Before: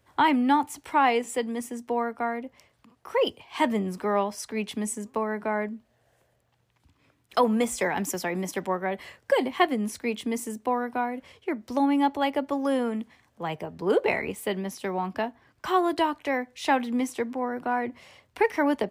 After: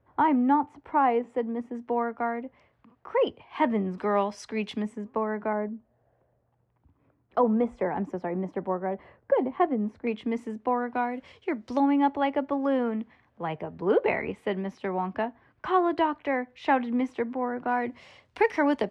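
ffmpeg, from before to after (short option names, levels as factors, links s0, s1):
-af "asetnsamples=n=441:p=0,asendcmd='1.75 lowpass f 2000;3.98 lowpass f 4500;4.82 lowpass f 1800;5.53 lowpass f 1000;10.07 lowpass f 2200;10.95 lowpass f 5300;11.8 lowpass f 2300;17.68 lowpass f 5800',lowpass=1200"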